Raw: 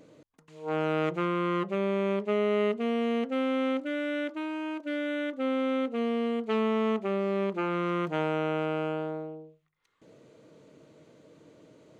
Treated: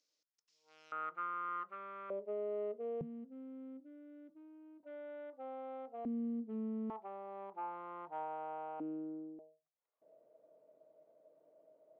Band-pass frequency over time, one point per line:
band-pass, Q 8.6
5300 Hz
from 0.92 s 1300 Hz
from 2.1 s 530 Hz
from 3.01 s 160 Hz
from 4.83 s 740 Hz
from 6.05 s 260 Hz
from 6.9 s 850 Hz
from 8.8 s 290 Hz
from 9.39 s 640 Hz

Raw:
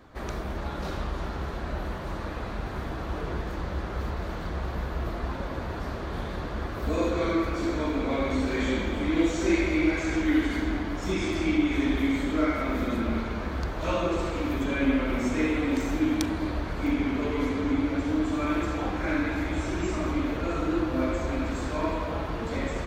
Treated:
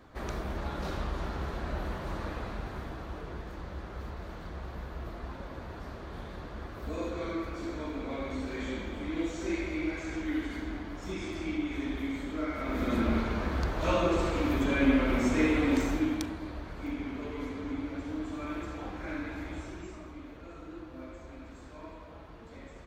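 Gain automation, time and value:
2.28 s -2.5 dB
3.26 s -9 dB
12.47 s -9 dB
12.98 s 0 dB
15.8 s 0 dB
16.4 s -10 dB
19.54 s -10 dB
20.09 s -18 dB

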